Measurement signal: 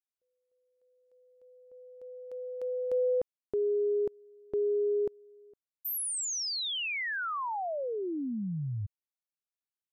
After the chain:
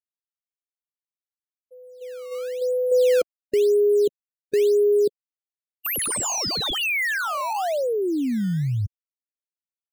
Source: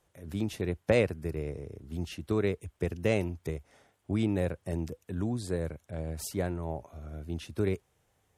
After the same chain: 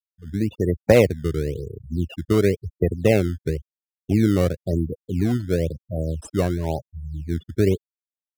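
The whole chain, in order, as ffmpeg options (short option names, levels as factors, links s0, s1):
-filter_complex "[0:a]afftfilt=real='re*gte(hypot(re,im),0.0282)':imag='im*gte(hypot(re,im),0.0282)':win_size=1024:overlap=0.75,dynaudnorm=f=100:g=9:m=1.58,asplit=2[s0][s1];[s1]acrusher=samples=15:mix=1:aa=0.000001:lfo=1:lforange=24:lforate=0.97,volume=0.531[s2];[s0][s2]amix=inputs=2:normalize=0,volume=1.41"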